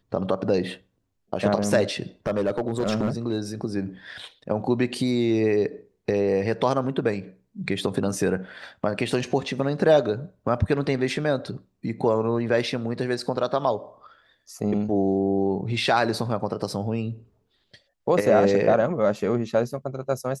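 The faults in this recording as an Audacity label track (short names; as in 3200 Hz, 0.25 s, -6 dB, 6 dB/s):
2.270000	3.380000	clipped -18 dBFS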